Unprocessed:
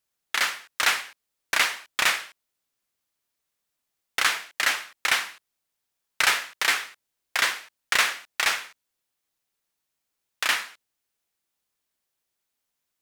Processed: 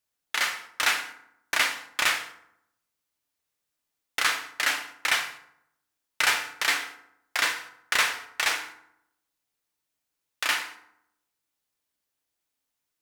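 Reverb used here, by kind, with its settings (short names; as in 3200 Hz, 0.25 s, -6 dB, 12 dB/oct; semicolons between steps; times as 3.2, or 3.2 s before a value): FDN reverb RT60 0.76 s, low-frequency decay 1.2×, high-frequency decay 0.6×, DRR 6 dB; gain -2.5 dB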